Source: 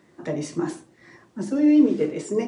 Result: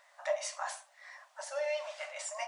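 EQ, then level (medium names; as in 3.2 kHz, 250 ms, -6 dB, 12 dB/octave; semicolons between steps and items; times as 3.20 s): brick-wall FIR high-pass 550 Hz; 0.0 dB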